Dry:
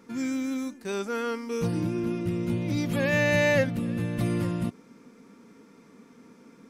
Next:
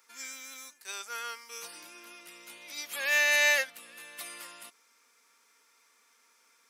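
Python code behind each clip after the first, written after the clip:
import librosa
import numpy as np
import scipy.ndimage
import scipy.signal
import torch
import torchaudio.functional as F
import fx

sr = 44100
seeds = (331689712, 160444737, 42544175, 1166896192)

y = scipy.signal.sosfilt(scipy.signal.butter(2, 860.0, 'highpass', fs=sr, output='sos'), x)
y = fx.tilt_eq(y, sr, slope=3.5)
y = fx.upward_expand(y, sr, threshold_db=-37.0, expansion=1.5)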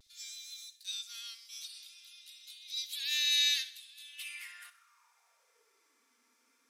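y = fx.filter_sweep_highpass(x, sr, from_hz=3800.0, to_hz=250.0, start_s=3.99, end_s=6.07, q=5.8)
y = fx.vibrato(y, sr, rate_hz=0.46, depth_cents=29.0)
y = fx.echo_feedback(y, sr, ms=64, feedback_pct=53, wet_db=-16.0)
y = y * 10.0 ** (-7.0 / 20.0)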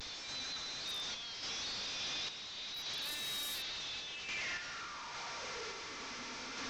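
y = fx.delta_mod(x, sr, bps=32000, step_db=-30.5)
y = fx.tremolo_random(y, sr, seeds[0], hz=3.5, depth_pct=55)
y = 10.0 ** (-33.0 / 20.0) * (np.abs((y / 10.0 ** (-33.0 / 20.0) + 3.0) % 4.0 - 2.0) - 1.0)
y = y * 10.0 ** (-2.5 / 20.0)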